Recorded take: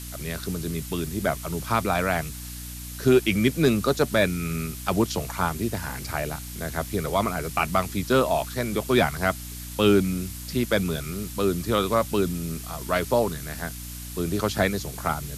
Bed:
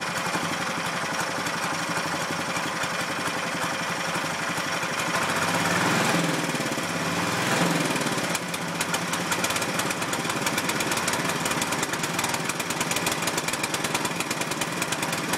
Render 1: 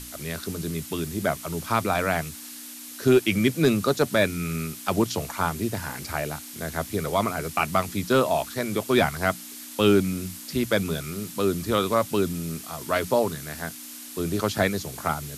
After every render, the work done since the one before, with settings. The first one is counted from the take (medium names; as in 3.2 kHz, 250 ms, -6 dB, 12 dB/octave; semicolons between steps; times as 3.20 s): hum notches 60/120/180 Hz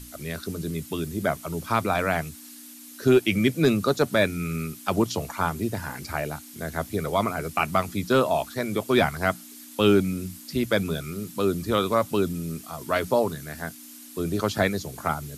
noise reduction 7 dB, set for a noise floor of -41 dBFS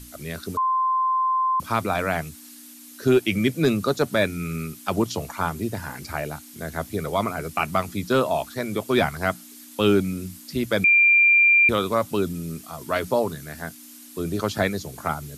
0.57–1.60 s: bleep 1.04 kHz -18.5 dBFS; 10.84–11.69 s: bleep 2.38 kHz -12.5 dBFS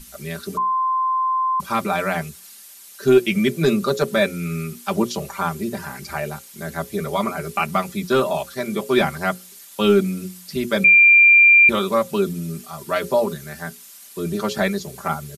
hum notches 60/120/180/240/300/360/420/480/540 Hz; comb 5.1 ms, depth 86%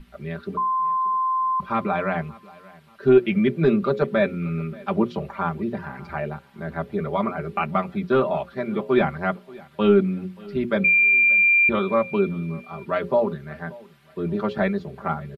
distance through air 470 m; feedback delay 581 ms, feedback 33%, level -22.5 dB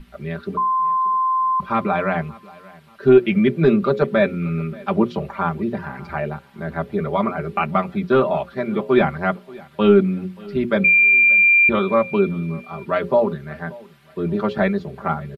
trim +3.5 dB; peak limiter -3 dBFS, peak gain reduction 1 dB